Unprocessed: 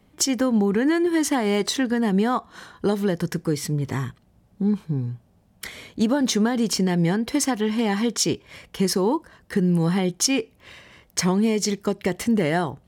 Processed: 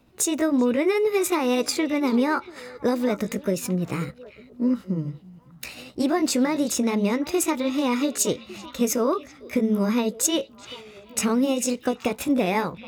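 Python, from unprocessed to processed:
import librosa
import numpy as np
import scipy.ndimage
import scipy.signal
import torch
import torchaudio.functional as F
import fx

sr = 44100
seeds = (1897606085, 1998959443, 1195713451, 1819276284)

y = fx.pitch_heads(x, sr, semitones=3.5)
y = fx.echo_stepped(y, sr, ms=385, hz=3100.0, octaves=-1.4, feedback_pct=70, wet_db=-11.0)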